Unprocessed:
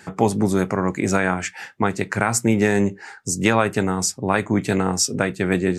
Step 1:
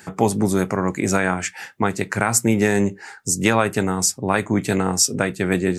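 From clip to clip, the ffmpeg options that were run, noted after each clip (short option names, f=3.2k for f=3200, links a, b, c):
-af "highshelf=f=10k:g=11.5"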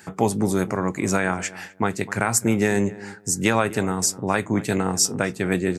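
-filter_complex "[0:a]asplit=2[a][b];[b]adelay=252,lowpass=f=1.4k:p=1,volume=-17dB,asplit=2[c][d];[d]adelay=252,lowpass=f=1.4k:p=1,volume=0.21[e];[a][c][e]amix=inputs=3:normalize=0,volume=-2.5dB"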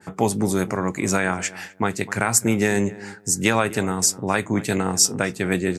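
-af "adynamicequalizer=threshold=0.0158:dfrequency=1800:dqfactor=0.7:tfrequency=1800:tqfactor=0.7:attack=5:release=100:ratio=0.375:range=1.5:mode=boostabove:tftype=highshelf"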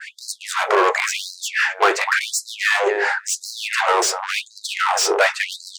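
-filter_complex "[0:a]aemphasis=mode=reproduction:type=75fm,asplit=2[a][b];[b]highpass=f=720:p=1,volume=31dB,asoftclip=type=tanh:threshold=-4.5dB[c];[a][c]amix=inputs=2:normalize=0,lowpass=f=2.8k:p=1,volume=-6dB,afftfilt=real='re*gte(b*sr/1024,330*pow(4000/330,0.5+0.5*sin(2*PI*0.93*pts/sr)))':imag='im*gte(b*sr/1024,330*pow(4000/330,0.5+0.5*sin(2*PI*0.93*pts/sr)))':win_size=1024:overlap=0.75"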